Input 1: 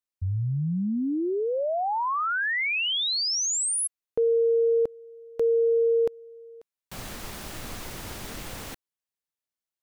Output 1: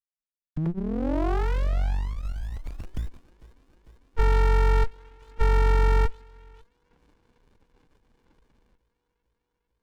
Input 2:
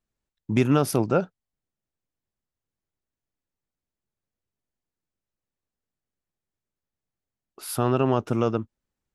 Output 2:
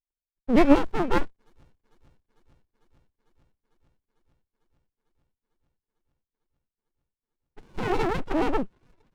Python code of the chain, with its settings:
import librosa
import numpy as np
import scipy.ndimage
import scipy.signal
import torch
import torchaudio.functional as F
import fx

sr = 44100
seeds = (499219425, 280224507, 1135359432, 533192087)

y = fx.sine_speech(x, sr)
y = fx.echo_wet_highpass(y, sr, ms=449, feedback_pct=79, hz=2300.0, wet_db=-21)
y = fx.running_max(y, sr, window=65)
y = y * librosa.db_to_amplitude(6.0)